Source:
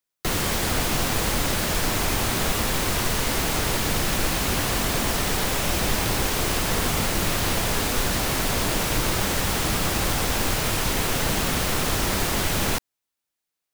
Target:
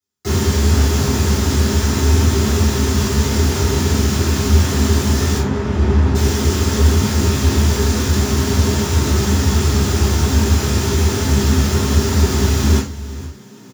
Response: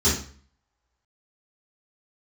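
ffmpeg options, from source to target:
-filter_complex "[0:a]asplit=5[a][b][c][d][e];[b]adelay=470,afreqshift=57,volume=-17dB[f];[c]adelay=940,afreqshift=114,volume=-24.3dB[g];[d]adelay=1410,afreqshift=171,volume=-31.7dB[h];[e]adelay=1880,afreqshift=228,volume=-39dB[i];[a][f][g][h][i]amix=inputs=5:normalize=0,asettb=1/sr,asplit=3[j][k][l];[j]atrim=end=5.384[m];[k]atrim=start=5.38:end=6.15,asetpts=PTS-STARTPTS,afade=t=in:d=0.004:c=qsin,afade=t=out:st=0.766:d=0.004:c=qsin,adynamicsmooth=sensitivity=2:basefreq=540[n];[l]atrim=start=6.146[o];[m][n]acrossfade=d=0.004:c1=hsin:c2=qsin[p];[p][o]acrossfade=d=0.004:c1=qsin:c2=hsin[q];[1:a]atrim=start_sample=2205,afade=t=out:st=0.16:d=0.01,atrim=end_sample=7497[r];[q][r]afir=irnorm=-1:irlink=0,volume=-13dB"

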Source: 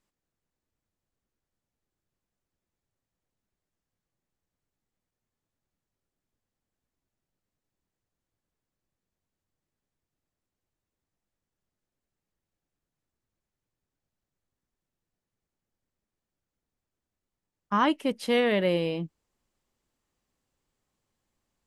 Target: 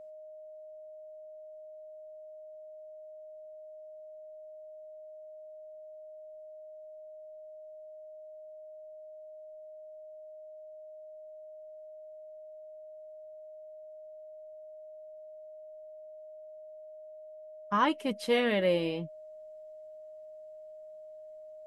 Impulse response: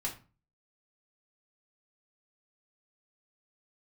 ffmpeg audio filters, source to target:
-af "flanger=delay=4.9:depth=4.5:regen=46:speed=0.72:shape=sinusoidal,aeval=exprs='val(0)+0.00447*sin(2*PI*620*n/s)':c=same,volume=1.5dB"

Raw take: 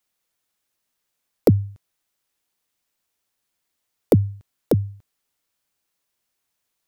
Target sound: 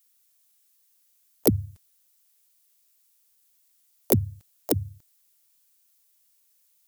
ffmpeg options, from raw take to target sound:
-filter_complex "[0:a]asplit=3[a][b][c];[b]asetrate=35002,aresample=44100,atempo=1.25992,volume=-7dB[d];[c]asetrate=58866,aresample=44100,atempo=0.749154,volume=-10dB[e];[a][d][e]amix=inputs=3:normalize=0,crystalizer=i=6:c=0,volume=-8dB"

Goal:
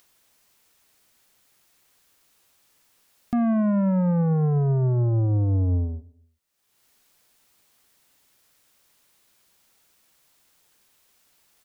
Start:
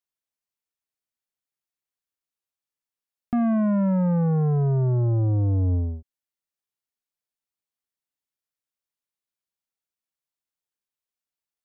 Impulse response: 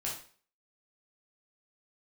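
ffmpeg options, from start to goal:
-filter_complex "[0:a]acompressor=mode=upward:threshold=-41dB:ratio=2.5,asplit=2[a][b];[b]adelay=122,lowpass=f=980:p=1,volume=-22dB,asplit=2[c][d];[d]adelay=122,lowpass=f=980:p=1,volume=0.48,asplit=2[e][f];[f]adelay=122,lowpass=f=980:p=1,volume=0.48[g];[a][c][e][g]amix=inputs=4:normalize=0"

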